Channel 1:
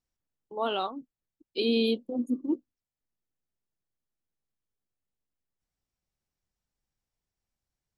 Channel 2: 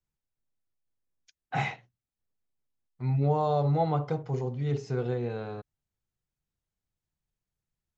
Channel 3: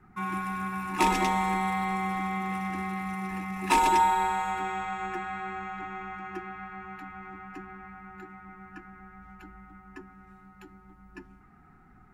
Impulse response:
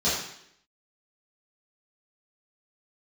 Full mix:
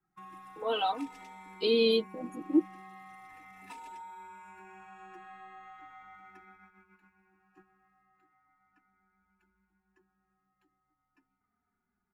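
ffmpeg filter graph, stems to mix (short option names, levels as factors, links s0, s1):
-filter_complex "[0:a]aecho=1:1:6.4:0.57,adelay=50,volume=1.26[s0];[2:a]lowshelf=f=160:g=-8.5,acompressor=threshold=0.0251:ratio=10,volume=0.282[s1];[s0][s1]amix=inputs=2:normalize=0,agate=range=0.316:threshold=0.00251:ratio=16:detection=peak,asplit=2[s2][s3];[s3]adelay=3.2,afreqshift=-0.39[s4];[s2][s4]amix=inputs=2:normalize=1"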